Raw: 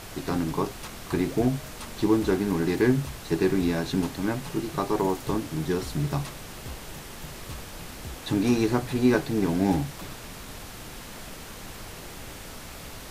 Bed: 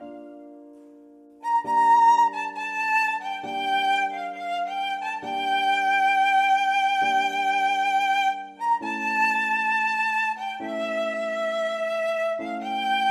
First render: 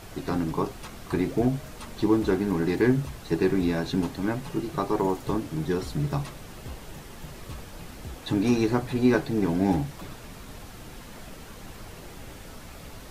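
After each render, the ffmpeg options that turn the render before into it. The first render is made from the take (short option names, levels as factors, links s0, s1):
-af "afftdn=nr=6:nf=-42"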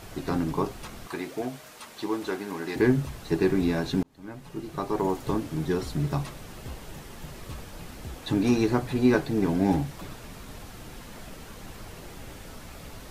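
-filter_complex "[0:a]asettb=1/sr,asplit=3[s0][s1][s2];[s0]atrim=end=1.074[s3];[s1]atrim=start=1.07:end=2.76,asetpts=PTS-STARTPTS,afade=t=in:d=0.004:c=qsin,afade=t=out:st=1.686:d=0.004:c=qsin,highpass=f=780:p=1[s4];[s2]atrim=start=2.756[s5];[s3][s4]acrossfade=d=0.004:c1=hsin:c2=qsin[s6];[s6][s5]acrossfade=d=0.004:c1=qsin:c2=hsin,asplit=2[s7][s8];[s7]atrim=end=4.03,asetpts=PTS-STARTPTS,afade=t=out:st=4.026:d=0.004:c=hsin[s9];[s8]atrim=start=4.03,asetpts=PTS-STARTPTS,afade=t=in:d=1.18[s10];[s9][s10]concat=n=2:v=0:a=1"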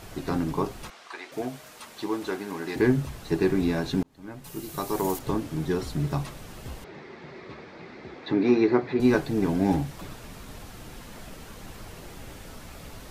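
-filter_complex "[0:a]asplit=3[s0][s1][s2];[s0]afade=t=out:st=0.89:d=0.02[s3];[s1]highpass=710,lowpass=5800,afade=t=in:st=0.89:d=0.02,afade=t=out:st=1.31:d=0.02[s4];[s2]afade=t=in:st=1.31:d=0.02[s5];[s3][s4][s5]amix=inputs=3:normalize=0,asettb=1/sr,asplit=3[s6][s7][s8];[s6]atrim=end=4.444[s9];[s7]atrim=start=4.44:end=5.19,asetpts=PTS-STARTPTS,afade=t=in:d=0.004:c=qsin,afade=t=out:st=0.746:d=0.004:c=qsin,aemphasis=mode=production:type=75fm[s10];[s8]atrim=start=5.186[s11];[s9][s10]acrossfade=d=0.004:c1=hsin:c2=qsin[s12];[s12][s11]acrossfade=d=0.004:c1=qsin:c2=hsin,asettb=1/sr,asplit=3[s13][s14][s15];[s13]atrim=end=6.844[s16];[s14]atrim=start=6.84:end=9,asetpts=PTS-STARTPTS,afade=t=in:d=0.004:c=qsin,afade=t=out:st=2.156:d=0.004:c=qsin,highpass=180,equalizer=f=380:t=q:w=4:g=8,equalizer=f=2100:t=q:w=4:g=7,equalizer=f=3000:t=q:w=4:g=-9,lowpass=f=4200:w=0.5412,lowpass=f=4200:w=1.3066[s17];[s15]atrim=start=8.996[s18];[s16][s17]acrossfade=d=0.004:c1=hsin:c2=qsin[s19];[s19][s18]acrossfade=d=0.004:c1=qsin:c2=hsin"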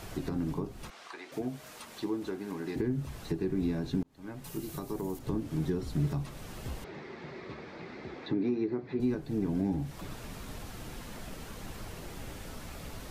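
-filter_complex "[0:a]alimiter=limit=0.112:level=0:latency=1:release=491,acrossover=split=380[s0][s1];[s1]acompressor=threshold=0.00631:ratio=5[s2];[s0][s2]amix=inputs=2:normalize=0"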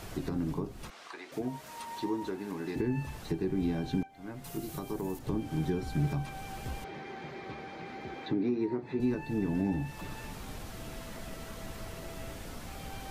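-filter_complex "[1:a]volume=0.0501[s0];[0:a][s0]amix=inputs=2:normalize=0"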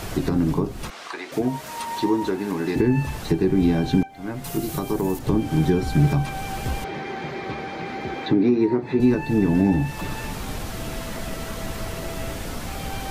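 -af "volume=3.98"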